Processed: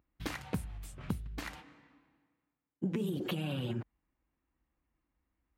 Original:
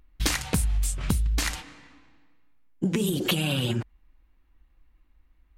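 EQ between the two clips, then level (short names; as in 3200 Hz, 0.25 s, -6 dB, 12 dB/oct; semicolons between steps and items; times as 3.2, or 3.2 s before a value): HPF 98 Hz 12 dB/oct; bell 7900 Hz -15 dB 2.4 oct; -8.0 dB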